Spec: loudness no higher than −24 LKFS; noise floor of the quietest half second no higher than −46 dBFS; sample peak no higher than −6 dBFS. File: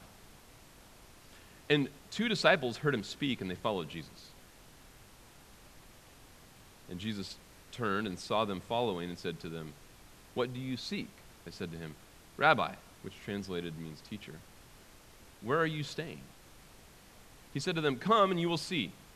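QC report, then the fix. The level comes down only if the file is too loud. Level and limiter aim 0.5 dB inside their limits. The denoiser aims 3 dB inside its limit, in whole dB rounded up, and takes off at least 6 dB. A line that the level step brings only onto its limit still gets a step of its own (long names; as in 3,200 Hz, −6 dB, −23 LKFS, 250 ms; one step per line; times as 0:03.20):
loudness −33.5 LKFS: in spec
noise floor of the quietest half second −57 dBFS: in spec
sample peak −10.0 dBFS: in spec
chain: no processing needed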